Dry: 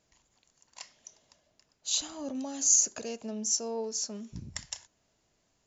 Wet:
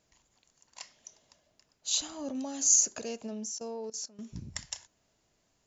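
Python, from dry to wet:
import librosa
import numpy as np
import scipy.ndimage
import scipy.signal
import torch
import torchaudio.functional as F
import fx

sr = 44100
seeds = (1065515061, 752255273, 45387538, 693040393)

y = fx.level_steps(x, sr, step_db=19, at=(3.27, 4.19))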